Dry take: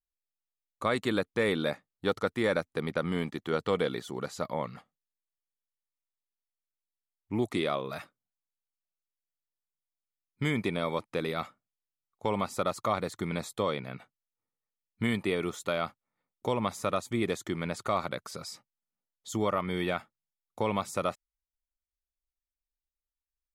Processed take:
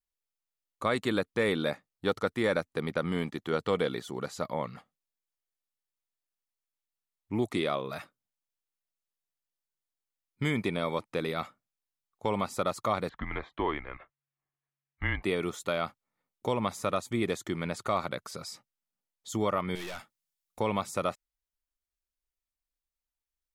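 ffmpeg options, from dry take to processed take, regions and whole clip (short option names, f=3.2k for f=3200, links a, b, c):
-filter_complex "[0:a]asettb=1/sr,asplit=3[a][b][c];[a]atrim=end=13.094[d];[b]atrim=start=13.09:end=15.23,asetpts=PTS-STARTPTS,afade=t=in:d=0.004:c=qsin,afade=t=out:st=2.136:d=0.004:c=qsin,lowpass=f=2.5k:w=0.5412,lowpass=f=2.5k:w=1.3066,tiltshelf=f=710:g=-5.5,afreqshift=-140[e];[c]atrim=start=15.226[f];[d][e]acrossfade=d=0.004:c1=hsin:c2=qsin[g];[g][f]acrossfade=d=0.004:c1=qsin:c2=hsin,asettb=1/sr,asplit=3[h][i][j];[h]atrim=end=19.754[k];[i]atrim=start=19.75:end=20.6,asetpts=PTS-STARTPTS,afade=t=in:d=0.004:c=qsin,afade=t=out:st=0.846:d=0.004:c=qsin,highshelf=f=2.3k:g=9.5,aeval=exprs='(tanh(70.8*val(0)+0.45)-tanh(0.45))/70.8':c=same[l];[j]atrim=start=20.596[m];[k][l]acrossfade=d=0.004:c1=hsin:c2=qsin[n];[n][m]acrossfade=d=0.004:c1=qsin:c2=hsin"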